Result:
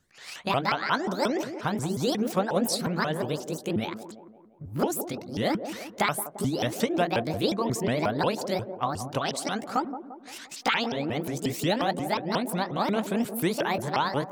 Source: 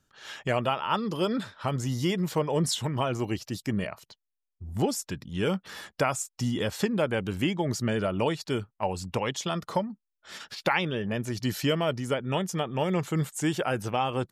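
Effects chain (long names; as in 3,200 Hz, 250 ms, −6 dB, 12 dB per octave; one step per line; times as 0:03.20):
pitch shifter swept by a sawtooth +9.5 semitones, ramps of 179 ms
delay with a band-pass on its return 173 ms, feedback 50%, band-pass 440 Hz, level −8.5 dB
level +1.5 dB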